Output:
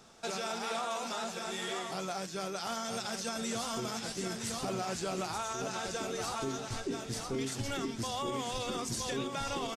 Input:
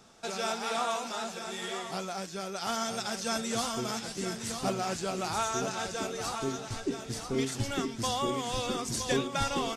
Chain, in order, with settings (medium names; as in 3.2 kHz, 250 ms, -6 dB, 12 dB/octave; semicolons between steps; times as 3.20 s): hum notches 50/100/150/200/250/300 Hz; peak limiter -26.5 dBFS, peak gain reduction 10 dB; harmony voices -4 st -17 dB